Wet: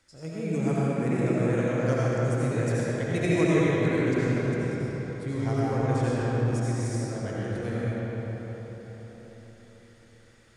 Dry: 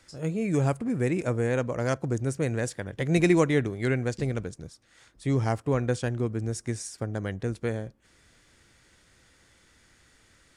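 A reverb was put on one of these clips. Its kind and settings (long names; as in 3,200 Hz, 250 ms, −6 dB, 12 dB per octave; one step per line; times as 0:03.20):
comb and all-pass reverb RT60 4.9 s, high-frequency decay 0.6×, pre-delay 45 ms, DRR −8.5 dB
level −8 dB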